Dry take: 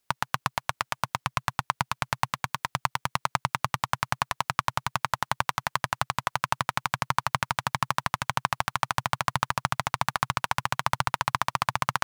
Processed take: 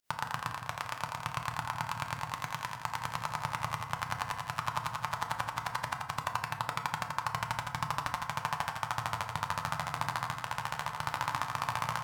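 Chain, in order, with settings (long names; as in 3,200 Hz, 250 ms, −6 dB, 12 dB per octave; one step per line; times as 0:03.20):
0:10.19–0:10.97: output level in coarse steps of 18 dB
brickwall limiter −14 dBFS, peak gain reduction 11 dB
fake sidechain pumping 110 BPM, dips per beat 1, −20 dB, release 112 ms
on a send: echo with a time of its own for lows and highs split 370 Hz, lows 159 ms, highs 84 ms, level −5 dB
on the sum: feedback delay network reverb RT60 1.1 s, low-frequency decay 0.85×, high-frequency decay 0.4×, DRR 4.5 dB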